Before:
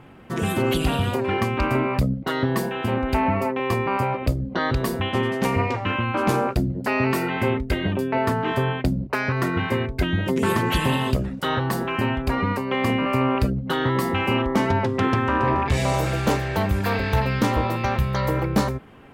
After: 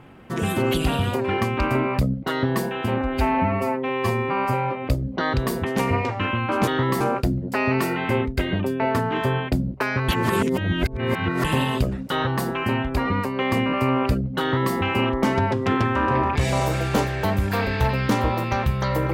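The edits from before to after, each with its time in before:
0:03.01–0:04.26: time-stretch 1.5×
0:05.02–0:05.30: remove
0:09.41–0:10.77: reverse
0:13.74–0:14.07: duplicate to 0:06.33

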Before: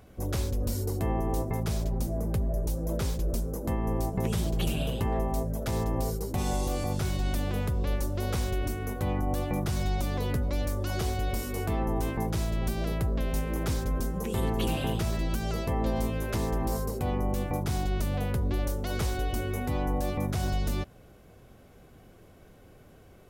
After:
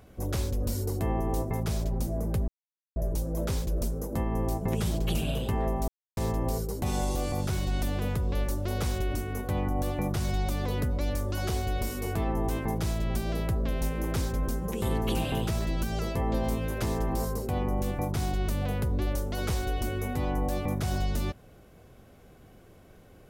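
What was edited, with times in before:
0:02.48: splice in silence 0.48 s
0:05.40–0:05.69: silence

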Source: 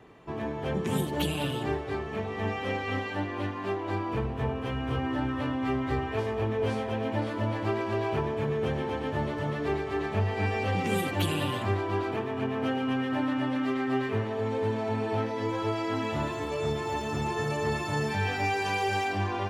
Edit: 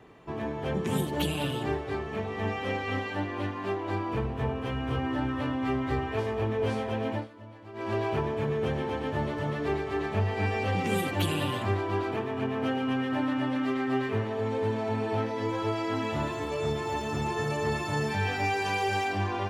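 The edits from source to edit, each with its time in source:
0:07.12–0:07.89: duck −17.5 dB, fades 0.16 s

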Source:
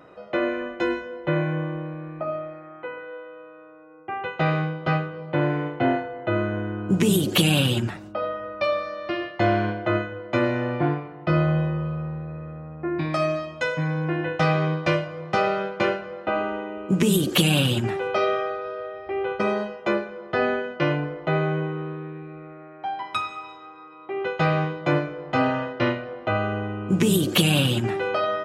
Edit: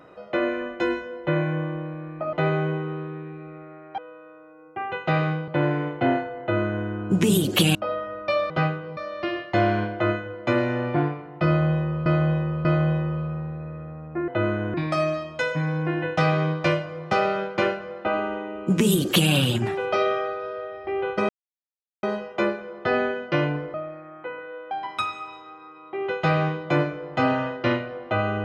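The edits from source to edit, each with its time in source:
0:02.33–0:03.30: swap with 0:21.22–0:22.87
0:04.80–0:05.27: move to 0:08.83
0:06.20–0:06.66: duplicate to 0:12.96
0:07.54–0:08.08: remove
0:11.33–0:11.92: repeat, 3 plays
0:19.51: splice in silence 0.74 s

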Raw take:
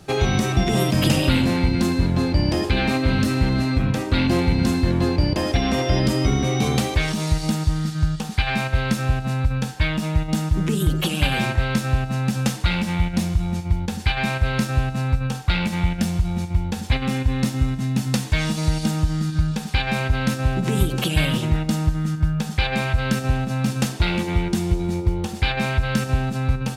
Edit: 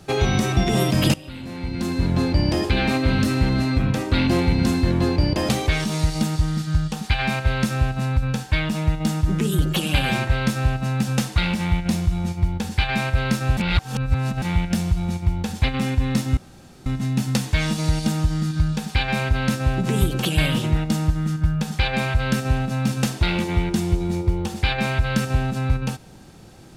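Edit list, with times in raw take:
0:01.14–0:02.12: fade in quadratic, from −20.5 dB
0:05.49–0:06.77: remove
0:14.85–0:15.70: reverse
0:17.65: splice in room tone 0.49 s

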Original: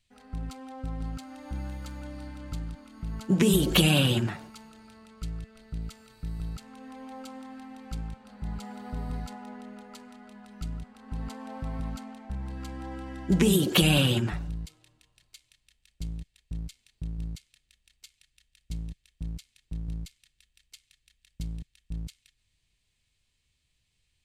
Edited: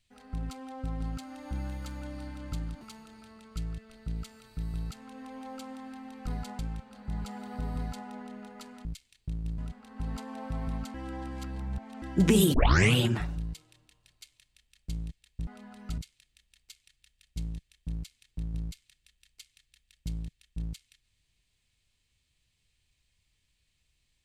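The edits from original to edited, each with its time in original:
0:02.81–0:04.47: remove
0:09.10–0:09.42: duplicate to 0:07.93
0:10.19–0:10.70: swap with 0:16.59–0:17.32
0:12.06–0:13.14: reverse
0:13.66: tape start 0.42 s

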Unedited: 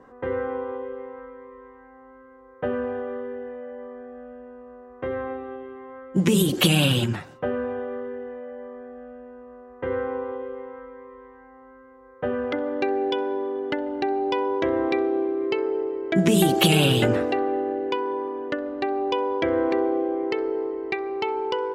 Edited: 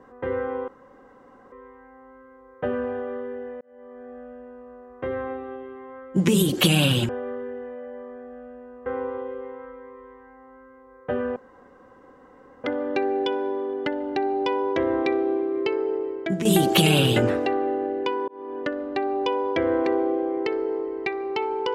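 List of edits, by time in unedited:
0:00.68–0:01.52: fill with room tone
0:03.61–0:04.11: fade in
0:07.09–0:07.74: remove
0:09.51–0:10.00: remove
0:12.50: splice in room tone 1.28 s
0:15.93–0:16.31: fade out, to −10.5 dB
0:18.14–0:18.44: fade in

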